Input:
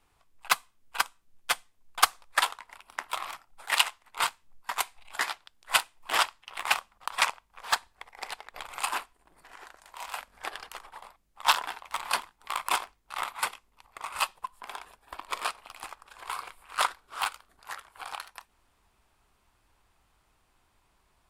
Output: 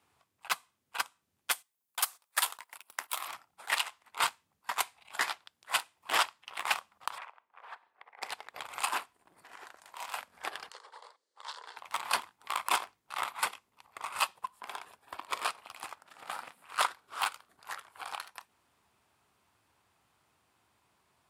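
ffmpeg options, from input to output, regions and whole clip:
-filter_complex "[0:a]asettb=1/sr,asplit=3[a][b][c];[a]atrim=end=1.514[d];[b]atrim=start=1.51:end=3.28,asetpts=PTS-STARTPTS,afade=t=in:d=0.004:c=qsin,afade=t=out:st=1.766:d=0.004:c=qsin,aemphasis=mode=production:type=bsi,agate=range=-12dB:threshold=-49dB:ratio=16:release=100:detection=peak[e];[c]atrim=start=3.276[f];[d][e]acrossfade=d=0.004:c1=hsin:c2=qsin[g];[g][f]acrossfade=d=0.004:c1=qsin:c2=hsin,asettb=1/sr,asplit=3[h][i][j];[h]atrim=end=7.184[k];[i]atrim=start=7.18:end=8.22,asetpts=PTS-STARTPTS,afade=t=in:d=0.004:c=qsin,afade=t=out:st=1.036:d=0.004:c=qsin,acrossover=split=310 2700:gain=0.0708 1 0.0794[l][m][n];[l][m][n]amix=inputs=3:normalize=0,acompressor=threshold=-47dB:ratio=3:attack=3.2:release=140:knee=1:detection=peak[o];[j]atrim=start=8.216[p];[k][o]acrossfade=d=0.004:c1=hsin:c2=qsin[q];[q][p]acrossfade=d=0.004:c1=qsin:c2=hsin,asettb=1/sr,asplit=3[r][s][t];[r]atrim=end=10.704[u];[s]atrim=start=10.7:end=11.77,asetpts=PTS-STARTPTS,afade=t=in:d=0.004:c=qsin,afade=t=out:st=1.066:d=0.004:c=qsin,acompressor=threshold=-42dB:ratio=3:attack=3.2:release=140:knee=1:detection=peak,highpass=f=400:w=0.5412,highpass=f=400:w=1.3066,equalizer=f=470:t=q:w=4:g=8,equalizer=f=720:t=q:w=4:g=-8,equalizer=f=1.3k:t=q:w=4:g=-3,equalizer=f=2.5k:t=q:w=4:g=-10,equalizer=f=4.4k:t=q:w=4:g=7,lowpass=f=8.6k:w=0.5412,lowpass=f=8.6k:w=1.3066[v];[t]atrim=start=11.766[w];[u][v]acrossfade=d=0.004:c1=hsin:c2=qsin[x];[x][w]acrossfade=d=0.004:c1=qsin:c2=hsin,asettb=1/sr,asplit=3[y][z][aa];[y]atrim=end=15.994[ab];[z]atrim=start=15.99:end=16.63,asetpts=PTS-STARTPTS,afade=t=in:d=0.004:c=qsin,afade=t=out:st=0.636:d=0.004:c=qsin,highpass=f=79:p=1,aeval=exprs='val(0)*sin(2*PI*220*n/s)':c=same[ac];[aa]atrim=start=16.626[ad];[ab][ac]acrossfade=d=0.004:c1=hsin:c2=qsin[ae];[ae][ad]acrossfade=d=0.004:c1=qsin:c2=hsin,highpass=f=89:w=0.5412,highpass=f=89:w=1.3066,alimiter=limit=-12dB:level=0:latency=1:release=255,volume=-1.5dB"

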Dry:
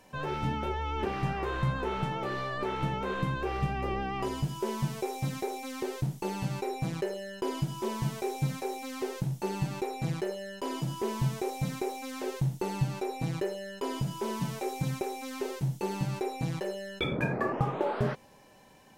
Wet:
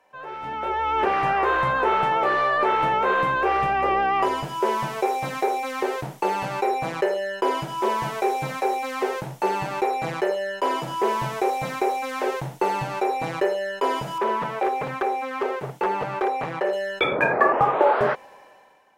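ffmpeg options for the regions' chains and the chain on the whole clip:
-filter_complex "[0:a]asettb=1/sr,asplit=3[a][b][c];[a]atrim=end=14.184[d];[b]atrim=start=14.18:end=16.73,asetpts=PTS-STARTPTS,afade=t=in:d=0.004:c=qsin,afade=t=out:st=2.546:d=0.004:c=qsin,acrossover=split=2900[e][f];[f]acompressor=threshold=-58dB:ratio=4:attack=1:release=60[g];[e][g]amix=inputs=2:normalize=0,highpass=94,aeval=exprs='0.0473*(abs(mod(val(0)/0.0473+3,4)-2)-1)':c=same[h];[c]atrim=start=16.726[i];[d][h]acrossfade=d=0.004:c1=hsin:c2=qsin[j];[j][i]acrossfade=d=0.004:c1=qsin:c2=hsin,acrossover=split=440 2400:gain=0.0891 1 0.224[k][l][m];[k][l][m]amix=inputs=3:normalize=0,dynaudnorm=f=200:g=7:m=15.5dB"

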